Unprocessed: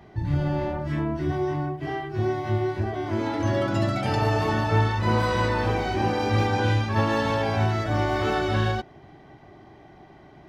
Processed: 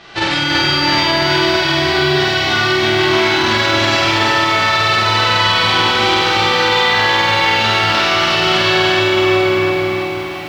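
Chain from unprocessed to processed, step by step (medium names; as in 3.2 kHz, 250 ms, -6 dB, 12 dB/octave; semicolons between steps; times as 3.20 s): formants flattened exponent 0.1; low-pass 4.1 kHz 24 dB/octave; hum notches 50/100/150/200/250 Hz; flutter echo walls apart 8.3 m, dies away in 1.5 s; simulated room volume 220 m³, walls hard, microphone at 0.72 m; loudness maximiser +17.5 dB; bit-crushed delay 333 ms, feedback 55%, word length 6-bit, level -4 dB; trim -6 dB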